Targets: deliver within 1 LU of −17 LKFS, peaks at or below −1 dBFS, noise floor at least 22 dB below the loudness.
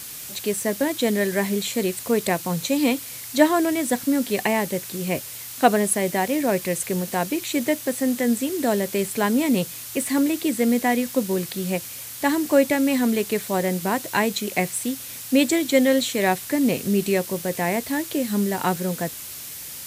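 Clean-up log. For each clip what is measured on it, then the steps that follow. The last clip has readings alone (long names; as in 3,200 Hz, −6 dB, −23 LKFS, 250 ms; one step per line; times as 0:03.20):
background noise floor −36 dBFS; target noise floor −45 dBFS; integrated loudness −22.5 LKFS; sample peak −3.0 dBFS; target loudness −17.0 LKFS
→ noise reduction from a noise print 9 dB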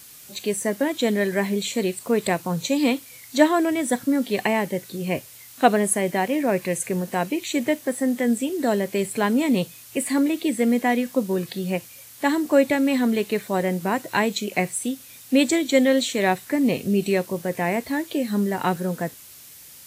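background noise floor −45 dBFS; integrated loudness −23.0 LKFS; sample peak −3.0 dBFS; target loudness −17.0 LKFS
→ level +6 dB
brickwall limiter −1 dBFS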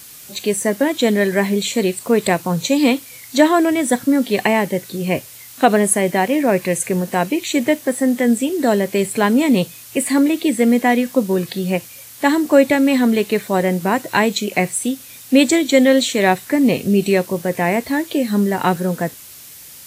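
integrated loudness −17.0 LKFS; sample peak −1.0 dBFS; background noise floor −39 dBFS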